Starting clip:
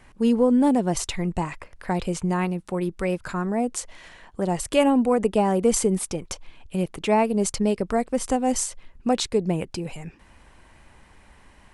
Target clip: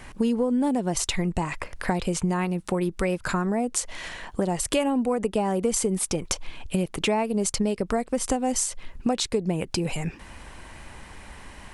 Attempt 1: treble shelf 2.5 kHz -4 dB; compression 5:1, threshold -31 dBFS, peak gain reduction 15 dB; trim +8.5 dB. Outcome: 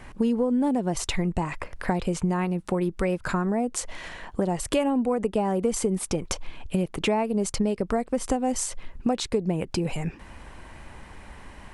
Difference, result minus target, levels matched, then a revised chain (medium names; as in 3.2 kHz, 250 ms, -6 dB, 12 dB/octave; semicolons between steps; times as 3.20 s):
4 kHz band -3.0 dB
treble shelf 2.5 kHz +3 dB; compression 5:1, threshold -31 dBFS, peak gain reduction 15.5 dB; trim +8.5 dB